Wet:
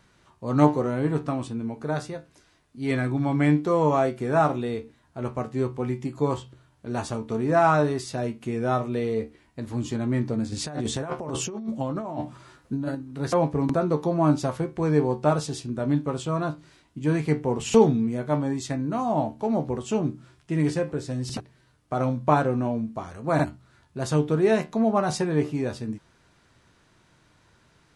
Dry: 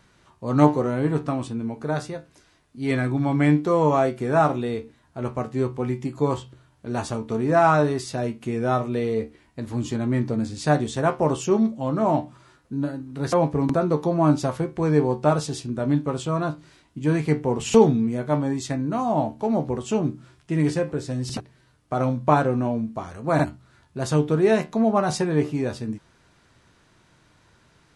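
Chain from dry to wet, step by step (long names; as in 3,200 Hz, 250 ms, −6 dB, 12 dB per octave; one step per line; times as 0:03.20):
0:10.52–0:12.95: compressor whose output falls as the input rises −28 dBFS, ratio −1
level −2 dB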